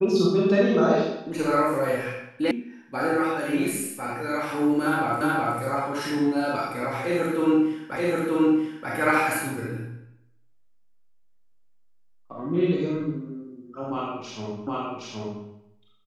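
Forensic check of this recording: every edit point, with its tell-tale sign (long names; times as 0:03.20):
0:02.51: cut off before it has died away
0:05.21: the same again, the last 0.37 s
0:07.96: the same again, the last 0.93 s
0:14.67: the same again, the last 0.77 s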